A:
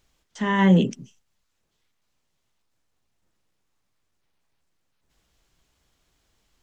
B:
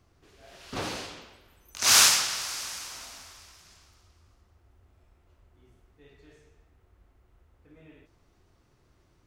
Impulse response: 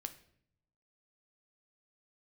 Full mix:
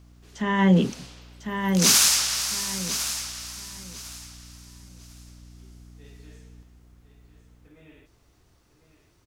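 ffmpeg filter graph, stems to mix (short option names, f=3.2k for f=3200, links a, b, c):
-filter_complex "[0:a]aeval=exprs='val(0)+0.00355*(sin(2*PI*60*n/s)+sin(2*PI*2*60*n/s)/2+sin(2*PI*3*60*n/s)/3+sin(2*PI*4*60*n/s)/4+sin(2*PI*5*60*n/s)/5)':c=same,volume=-1.5dB,asplit=3[a][b][c];[b]volume=-5dB[d];[1:a]alimiter=limit=-13.5dB:level=0:latency=1:release=374,highshelf=f=3.7k:g=9,volume=0dB,asplit=3[e][f][g];[f]volume=-17dB[h];[g]volume=-10.5dB[i];[c]apad=whole_len=408486[j];[e][j]sidechaincompress=threshold=-37dB:ratio=4:attack=16:release=543[k];[2:a]atrim=start_sample=2205[l];[h][l]afir=irnorm=-1:irlink=0[m];[d][i]amix=inputs=2:normalize=0,aecho=0:1:1050|2100|3150|4200:1|0.23|0.0529|0.0122[n];[a][k][m][n]amix=inputs=4:normalize=0"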